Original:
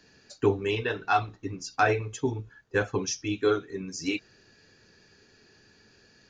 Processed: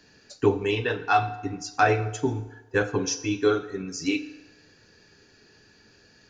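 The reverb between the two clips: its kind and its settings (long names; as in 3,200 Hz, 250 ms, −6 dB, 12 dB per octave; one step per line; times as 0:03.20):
feedback delay network reverb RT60 1.1 s, low-frequency decay 0.7×, high-frequency decay 0.75×, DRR 10.5 dB
level +2 dB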